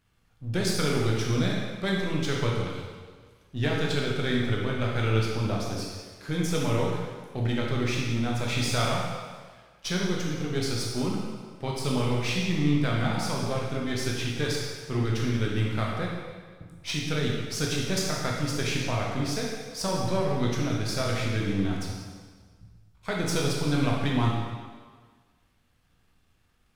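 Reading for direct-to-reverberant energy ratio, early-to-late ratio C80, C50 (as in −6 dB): −3.0 dB, 2.5 dB, 0.0 dB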